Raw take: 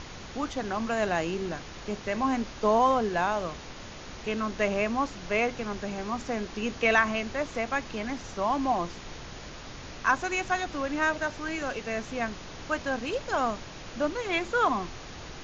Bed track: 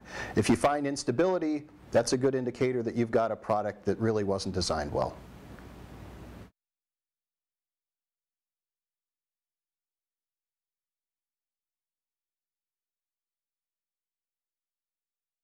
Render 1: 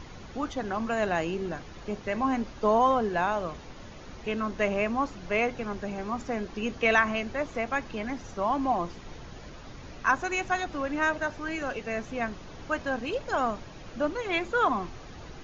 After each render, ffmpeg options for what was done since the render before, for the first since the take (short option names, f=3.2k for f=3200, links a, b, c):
-af "afftdn=nr=8:nf=-43"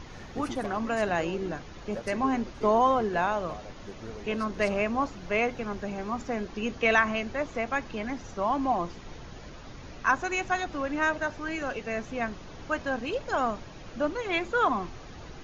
-filter_complex "[1:a]volume=-14.5dB[a];[0:a][a]amix=inputs=2:normalize=0"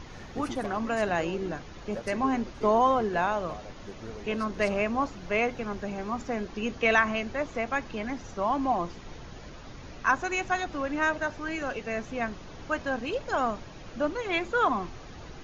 -af anull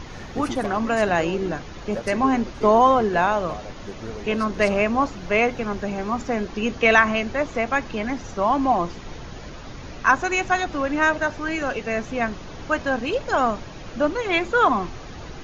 -af "volume=7dB"